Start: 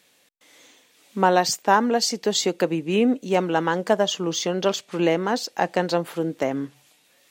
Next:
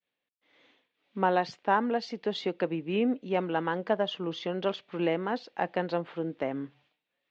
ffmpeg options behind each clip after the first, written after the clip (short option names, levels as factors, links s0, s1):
-af "agate=range=0.0224:threshold=0.00316:ratio=3:detection=peak,lowpass=f=3500:w=0.5412,lowpass=f=3500:w=1.3066,volume=0.422"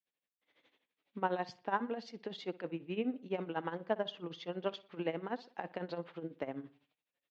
-filter_complex "[0:a]tremolo=f=12:d=0.81,asplit=2[s0][s1];[s1]adelay=60,lowpass=f=4400:p=1,volume=0.112,asplit=2[s2][s3];[s3]adelay=60,lowpass=f=4400:p=1,volume=0.45,asplit=2[s4][s5];[s5]adelay=60,lowpass=f=4400:p=1,volume=0.45,asplit=2[s6][s7];[s7]adelay=60,lowpass=f=4400:p=1,volume=0.45[s8];[s0][s2][s4][s6][s8]amix=inputs=5:normalize=0,volume=0.531"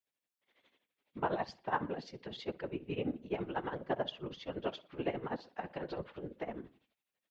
-af "afftfilt=real='hypot(re,im)*cos(2*PI*random(0))':imag='hypot(re,im)*sin(2*PI*random(1))':win_size=512:overlap=0.75,volume=2"